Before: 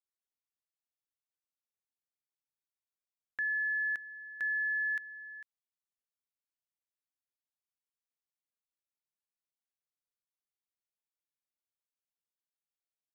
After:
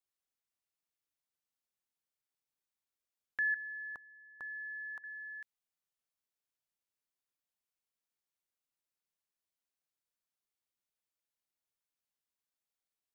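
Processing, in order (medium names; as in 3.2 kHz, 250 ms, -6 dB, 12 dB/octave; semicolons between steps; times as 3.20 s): 3.54–5.04 s: resonant high shelf 1.5 kHz -12.5 dB, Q 3; trim +1 dB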